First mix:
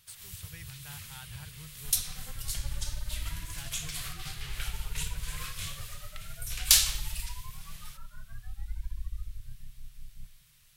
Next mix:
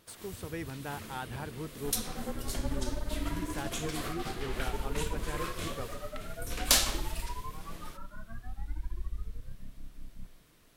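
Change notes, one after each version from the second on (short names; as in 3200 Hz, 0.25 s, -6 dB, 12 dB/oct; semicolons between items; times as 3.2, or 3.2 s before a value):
speech +4.0 dB; master: remove EQ curve 150 Hz 0 dB, 260 Hz -25 dB, 2600 Hz +2 dB, 14000 Hz +6 dB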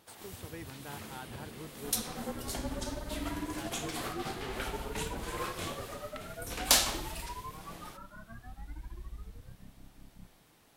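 speech -6.5 dB; first sound: add bell 810 Hz +12 dB 0.24 oct; master: add HPF 83 Hz 6 dB/oct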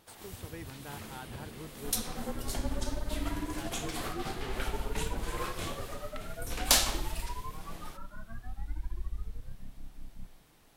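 master: remove HPF 83 Hz 6 dB/oct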